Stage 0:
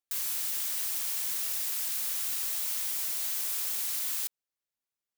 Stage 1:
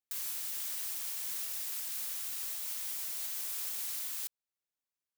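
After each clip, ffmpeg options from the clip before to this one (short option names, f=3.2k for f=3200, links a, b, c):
-af "alimiter=limit=-23dB:level=0:latency=1:release=344,volume=-4dB"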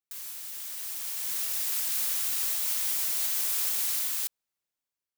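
-af "dynaudnorm=f=360:g=7:m=11.5dB,volume=-2dB"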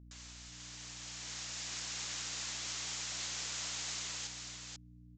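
-filter_complex "[0:a]aeval=exprs='val(0)+0.00316*(sin(2*PI*60*n/s)+sin(2*PI*2*60*n/s)/2+sin(2*PI*3*60*n/s)/3+sin(2*PI*4*60*n/s)/4+sin(2*PI*5*60*n/s)/5)':c=same,asplit=2[a][b];[b]aecho=0:1:490:0.562[c];[a][c]amix=inputs=2:normalize=0,aresample=16000,aresample=44100,volume=-4dB"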